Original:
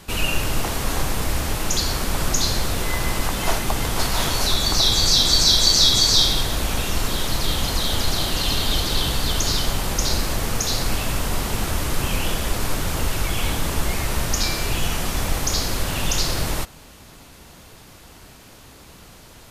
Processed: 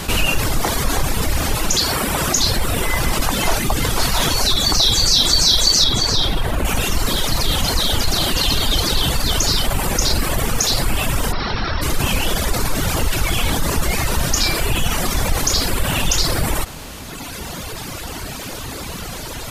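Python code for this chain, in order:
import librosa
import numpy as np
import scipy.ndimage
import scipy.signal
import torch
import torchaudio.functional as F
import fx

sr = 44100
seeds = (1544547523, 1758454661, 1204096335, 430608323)

y = fx.dereverb_blind(x, sr, rt60_s=1.6)
y = fx.highpass(y, sr, hz=140.0, slope=6, at=(1.76, 2.38))
y = fx.high_shelf(y, sr, hz=3500.0, db=-11.0, at=(5.84, 6.65))
y = fx.cheby_ripple(y, sr, hz=5600.0, ripple_db=6, at=(11.31, 11.81), fade=0.02)
y = fx.env_flatten(y, sr, amount_pct=50)
y = y * librosa.db_to_amplitude(2.5)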